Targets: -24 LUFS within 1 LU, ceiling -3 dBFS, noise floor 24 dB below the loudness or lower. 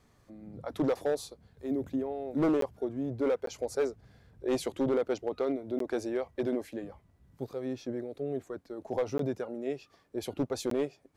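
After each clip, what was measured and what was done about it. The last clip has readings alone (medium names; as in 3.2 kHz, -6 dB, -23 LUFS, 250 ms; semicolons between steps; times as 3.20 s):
clipped samples 1.1%; clipping level -22.5 dBFS; dropouts 5; longest dropout 13 ms; loudness -33.5 LUFS; peak level -22.5 dBFS; loudness target -24.0 LUFS
-> clip repair -22.5 dBFS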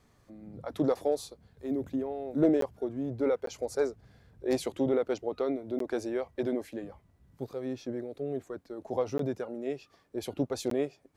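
clipped samples 0.0%; dropouts 5; longest dropout 13 ms
-> interpolate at 2.61/3.46/5.79/9.18/10.70 s, 13 ms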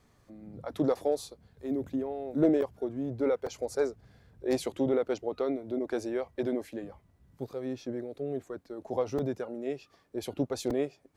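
dropouts 0; loudness -32.5 LUFS; peak level -13.5 dBFS; loudness target -24.0 LUFS
-> trim +8.5 dB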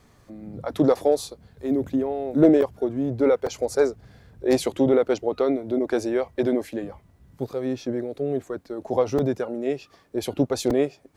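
loudness -24.0 LUFS; peak level -5.0 dBFS; noise floor -57 dBFS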